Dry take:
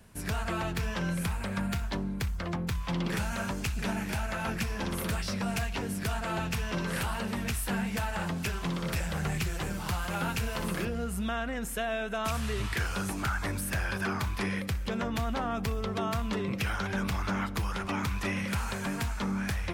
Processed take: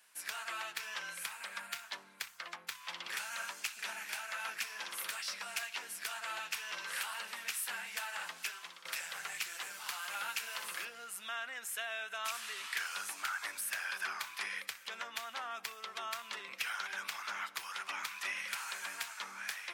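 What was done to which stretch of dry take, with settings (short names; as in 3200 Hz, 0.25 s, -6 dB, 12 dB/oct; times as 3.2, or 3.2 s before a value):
8.39–8.85 fade out, to -13 dB
whole clip: HPF 1400 Hz 12 dB/oct; gain -1.5 dB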